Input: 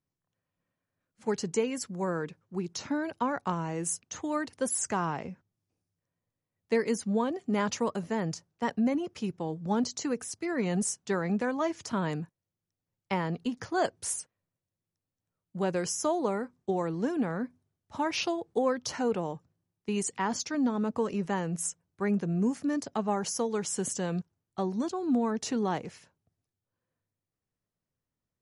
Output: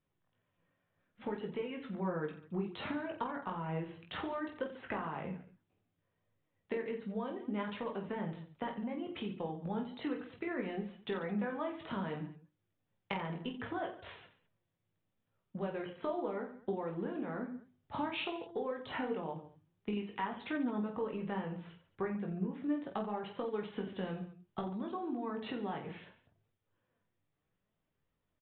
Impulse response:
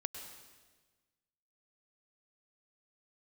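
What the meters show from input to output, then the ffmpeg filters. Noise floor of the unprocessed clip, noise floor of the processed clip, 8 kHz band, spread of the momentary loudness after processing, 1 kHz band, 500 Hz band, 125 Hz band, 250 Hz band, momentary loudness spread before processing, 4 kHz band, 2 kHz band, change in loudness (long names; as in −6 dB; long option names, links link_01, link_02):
below −85 dBFS, −84 dBFS, below −40 dB, 7 LU, −7.5 dB, −7.5 dB, −7.5 dB, −8.0 dB, 7 LU, −8.0 dB, −6.0 dB, −8.5 dB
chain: -filter_complex "[0:a]aresample=8000,aresample=44100,acompressor=threshold=-40dB:ratio=16,bandreject=frequency=50:width_type=h:width=6,bandreject=frequency=100:width_type=h:width=6,bandreject=frequency=150:width_type=h:width=6,bandreject=frequency=200:width_type=h:width=6,bandreject=frequency=250:width_type=h:width=6,bandreject=frequency=300:width_type=h:width=6,bandreject=frequency=350:width_type=h:width=6,asplit=2[link_01][link_02];[link_02]aecho=0:1:20|48|87.2|142.1|218.9:0.631|0.398|0.251|0.158|0.1[link_03];[link_01][link_03]amix=inputs=2:normalize=0,flanger=delay=1.5:depth=5.7:regen=70:speed=0.64:shape=triangular,volume=8.5dB"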